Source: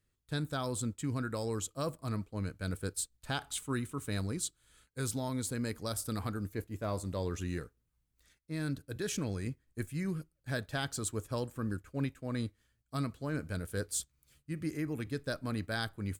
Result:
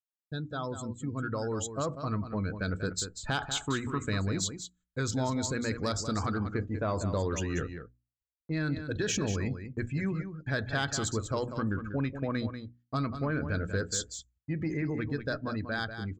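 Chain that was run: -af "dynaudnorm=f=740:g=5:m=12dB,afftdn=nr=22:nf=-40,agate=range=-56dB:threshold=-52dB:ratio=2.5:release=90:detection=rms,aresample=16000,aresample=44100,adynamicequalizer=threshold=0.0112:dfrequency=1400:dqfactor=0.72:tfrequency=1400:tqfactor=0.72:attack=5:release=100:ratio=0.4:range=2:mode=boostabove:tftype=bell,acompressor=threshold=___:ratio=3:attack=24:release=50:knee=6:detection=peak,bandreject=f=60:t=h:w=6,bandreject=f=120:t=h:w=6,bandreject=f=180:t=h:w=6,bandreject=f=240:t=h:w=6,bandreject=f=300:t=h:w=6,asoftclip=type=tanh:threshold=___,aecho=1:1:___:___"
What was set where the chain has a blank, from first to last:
-33dB, -18.5dB, 191, 0.335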